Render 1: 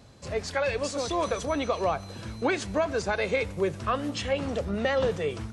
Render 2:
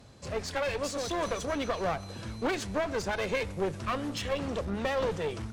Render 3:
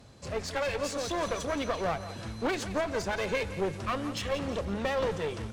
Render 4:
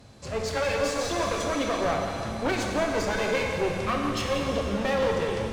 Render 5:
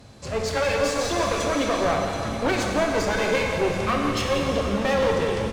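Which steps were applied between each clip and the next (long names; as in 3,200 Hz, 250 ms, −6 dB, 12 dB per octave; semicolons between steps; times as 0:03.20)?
asymmetric clip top −33 dBFS; level −1 dB
feedback echo with a high-pass in the loop 173 ms, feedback 52%, level −12.5 dB
dense smooth reverb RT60 2.7 s, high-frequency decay 1×, DRR 0 dB; level +2 dB
single-tap delay 726 ms −13.5 dB; level +3.5 dB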